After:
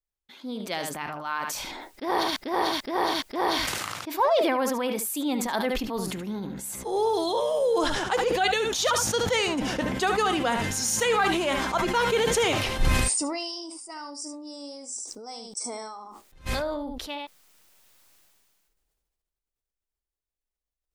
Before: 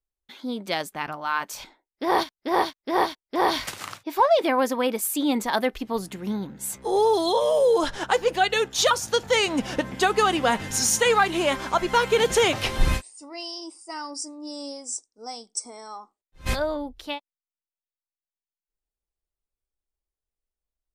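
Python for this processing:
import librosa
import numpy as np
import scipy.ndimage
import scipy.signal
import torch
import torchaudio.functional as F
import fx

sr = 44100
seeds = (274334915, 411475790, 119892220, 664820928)

p1 = x + fx.echo_single(x, sr, ms=73, db=-11.5, dry=0)
p2 = fx.sustainer(p1, sr, db_per_s=25.0)
y = p2 * librosa.db_to_amplitude(-5.0)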